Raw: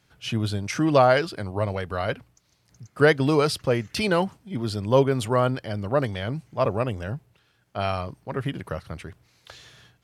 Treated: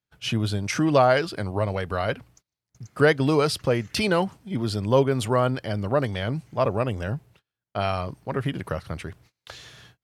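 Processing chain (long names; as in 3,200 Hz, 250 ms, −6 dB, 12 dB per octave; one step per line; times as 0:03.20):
noise gate −56 dBFS, range −28 dB
in parallel at 0 dB: downward compressor, threshold −28 dBFS, peak gain reduction 14.5 dB
on the sum: level −2.5 dB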